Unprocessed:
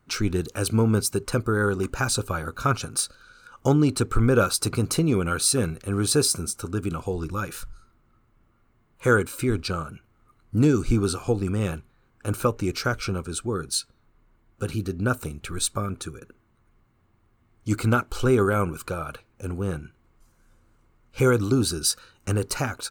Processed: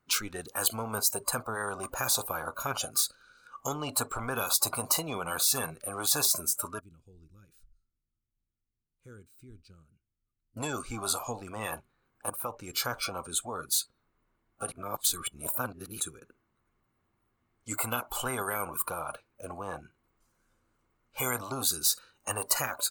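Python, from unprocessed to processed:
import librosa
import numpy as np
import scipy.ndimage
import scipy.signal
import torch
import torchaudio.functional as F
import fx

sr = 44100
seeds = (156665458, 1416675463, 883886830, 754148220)

y = fx.tone_stack(x, sr, knobs='10-0-1', at=(6.79, 10.57))
y = fx.edit(y, sr, fx.fade_in_from(start_s=12.3, length_s=0.49, floor_db=-14.0),
    fx.reverse_span(start_s=14.72, length_s=1.28), tone=tone)
y = fx.noise_reduce_blind(y, sr, reduce_db=24)
y = fx.low_shelf(y, sr, hz=160.0, db=-9.5)
y = fx.spectral_comp(y, sr, ratio=4.0)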